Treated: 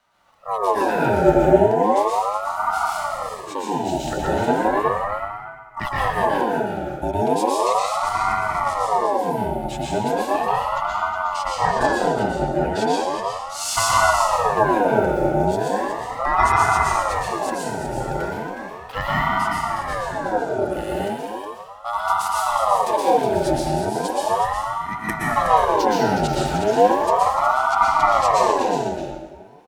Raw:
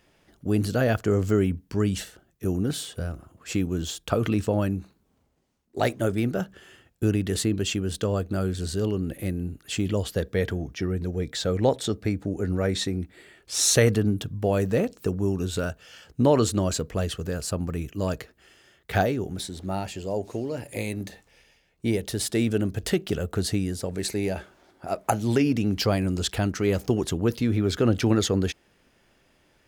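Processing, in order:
frequency inversion band by band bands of 500 Hz
parametric band 110 Hz +10.5 dB 1.1 octaves
single-tap delay 366 ms −7.5 dB
dense smooth reverb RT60 1.6 s, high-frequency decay 0.6×, pre-delay 105 ms, DRR −6 dB
ring modulator whose carrier an LFO sweeps 770 Hz, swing 40%, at 0.36 Hz
level −3 dB

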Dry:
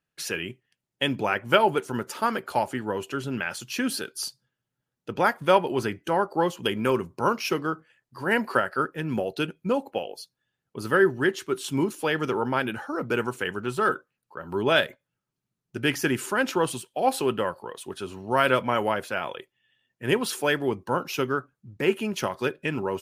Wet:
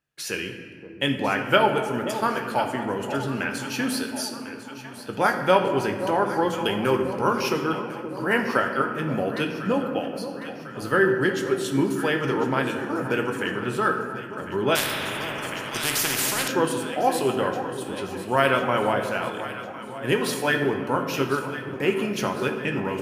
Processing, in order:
delay that swaps between a low-pass and a high-pass 525 ms, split 1,000 Hz, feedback 74%, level −10.5 dB
on a send at −3.5 dB: convolution reverb RT60 2.1 s, pre-delay 15 ms
0:14.75–0:16.48: on the sum: every bin compressed towards the loudest bin 4 to 1

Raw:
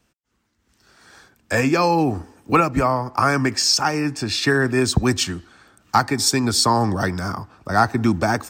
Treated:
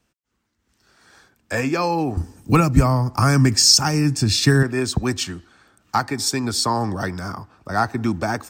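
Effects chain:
0:02.17–0:04.63: bass and treble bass +15 dB, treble +11 dB
level −3.5 dB

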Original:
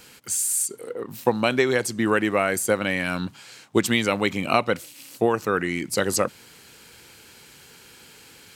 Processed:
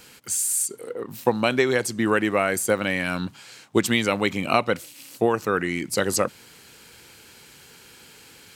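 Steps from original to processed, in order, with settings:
0:02.54–0:02.98: surface crackle 120 per second → 50 per second −37 dBFS

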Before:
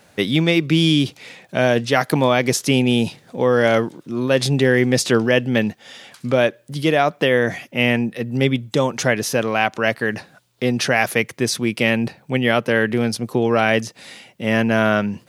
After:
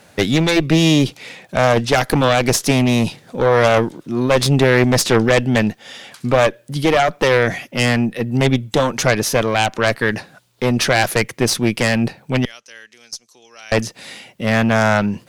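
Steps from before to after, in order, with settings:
0:12.45–0:13.72: resonant band-pass 6,100 Hz, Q 4.1
harmonic generator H 4 −8 dB, 5 −14 dB, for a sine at −1.5 dBFS
level −2 dB

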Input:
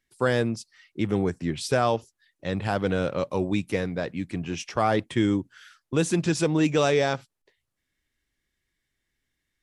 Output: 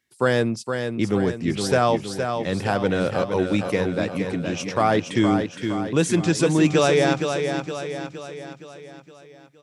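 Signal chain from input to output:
high-pass filter 97 Hz
repeating echo 466 ms, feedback 52%, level −6.5 dB
level +3.5 dB

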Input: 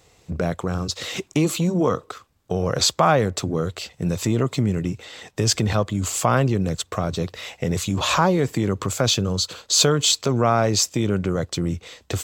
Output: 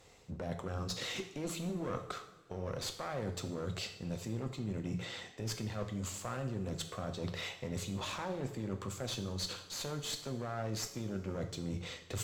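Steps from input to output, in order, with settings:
mains-hum notches 60/120/180 Hz
asymmetric clip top −25 dBFS
reversed playback
downward compressor 12 to 1, threshold −31 dBFS, peak gain reduction 17.5 dB
reversed playback
high-shelf EQ 7,300 Hz −5 dB
coupled-rooms reverb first 0.66 s, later 2.7 s, from −18 dB, DRR 5.5 dB
level −4.5 dB

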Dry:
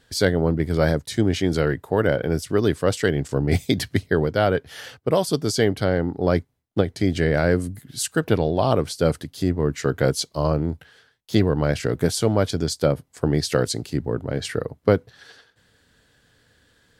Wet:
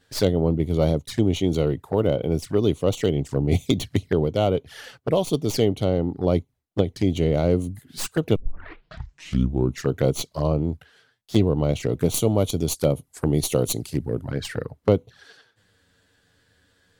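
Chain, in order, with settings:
stylus tracing distortion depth 0.066 ms
0:08.36: tape start 1.50 s
0:12.14–0:14.31: parametric band 11,000 Hz +12 dB 0.98 octaves
flanger swept by the level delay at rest 11.4 ms, full sweep at −19 dBFS

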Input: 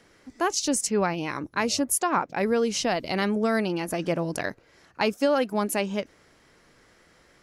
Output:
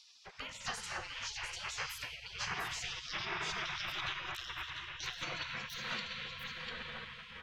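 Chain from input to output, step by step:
pitch glide at a constant tempo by +8.5 semitones starting unshifted
on a send at −4 dB: parametric band 950 Hz −8 dB 0.54 octaves + convolution reverb RT60 5.3 s, pre-delay 5 ms
on the sum: downward compressor 5 to 1, threshold −29 dBFS, peak gain reduction 10 dB
high-frequency loss of the air 240 metres
single-tap delay 696 ms −6 dB
gate on every frequency bin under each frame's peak −25 dB weak
one half of a high-frequency compander encoder only
level +10.5 dB

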